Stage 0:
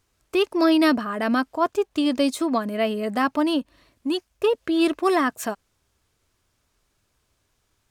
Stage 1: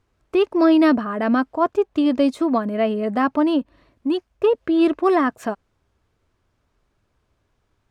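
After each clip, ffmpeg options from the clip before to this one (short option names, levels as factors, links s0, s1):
-af "lowpass=f=1300:p=1,volume=1.58"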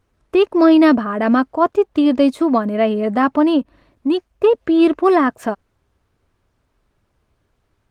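-af "volume=1.58" -ar 48000 -c:a libopus -b:a 24k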